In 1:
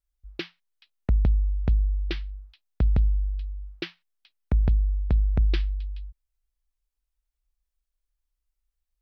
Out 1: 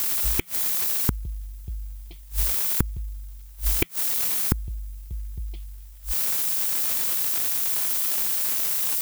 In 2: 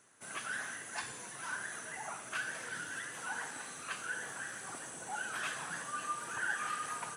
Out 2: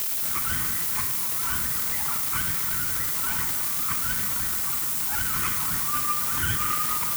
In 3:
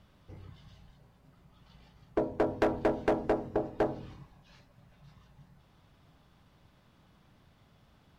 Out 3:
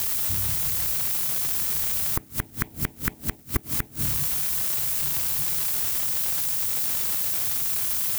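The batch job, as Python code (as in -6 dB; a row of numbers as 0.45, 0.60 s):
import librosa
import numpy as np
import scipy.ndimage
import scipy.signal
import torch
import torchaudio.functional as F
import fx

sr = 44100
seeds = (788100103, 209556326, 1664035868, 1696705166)

y = fx.lower_of_two(x, sr, delay_ms=0.9)
y = scipy.signal.sosfilt(scipy.signal.butter(2, 42.0, 'highpass', fs=sr, output='sos'), y)
y = fx.low_shelf(y, sr, hz=160.0, db=5.0)
y = fx.env_phaser(y, sr, low_hz=530.0, high_hz=1500.0, full_db=-24.0)
y = fx.dmg_crackle(y, sr, seeds[0], per_s=400.0, level_db=-35.0)
y = fx.dmg_noise_colour(y, sr, seeds[1], colour='violet', level_db=-39.0)
y = fx.gate_flip(y, sr, shuts_db=-22.0, range_db=-29)
y = y * 10.0 ** (-26 / 20.0) / np.sqrt(np.mean(np.square(y)))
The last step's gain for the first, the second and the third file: +14.5, +12.0, +13.5 dB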